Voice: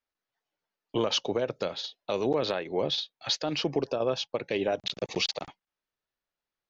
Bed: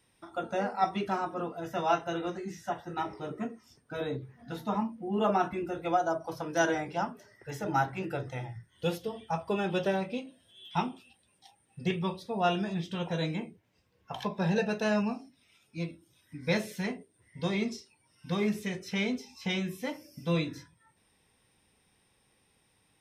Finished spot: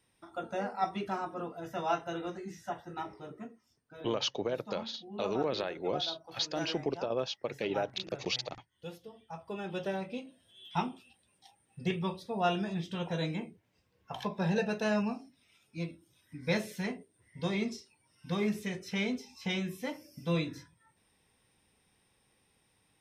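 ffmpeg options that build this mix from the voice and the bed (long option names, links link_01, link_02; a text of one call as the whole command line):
ffmpeg -i stem1.wav -i stem2.wav -filter_complex "[0:a]adelay=3100,volume=-5dB[link_01];[1:a]volume=7.5dB,afade=type=out:start_time=2.75:duration=0.96:silence=0.334965,afade=type=in:start_time=9.25:duration=1.3:silence=0.266073[link_02];[link_01][link_02]amix=inputs=2:normalize=0" out.wav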